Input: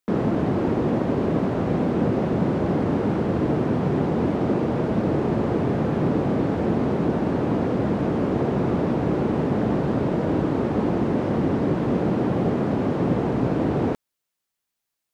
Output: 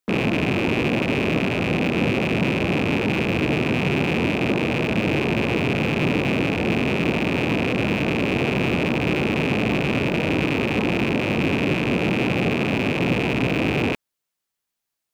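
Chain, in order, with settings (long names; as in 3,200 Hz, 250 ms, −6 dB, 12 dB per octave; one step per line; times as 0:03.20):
loose part that buzzes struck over −32 dBFS, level −14 dBFS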